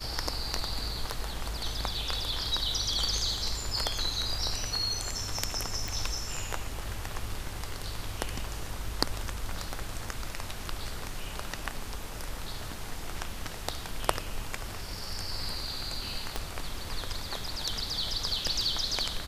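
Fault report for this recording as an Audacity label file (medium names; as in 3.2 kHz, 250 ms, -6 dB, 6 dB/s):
5.880000	5.880000	pop
16.360000	16.360000	pop -16 dBFS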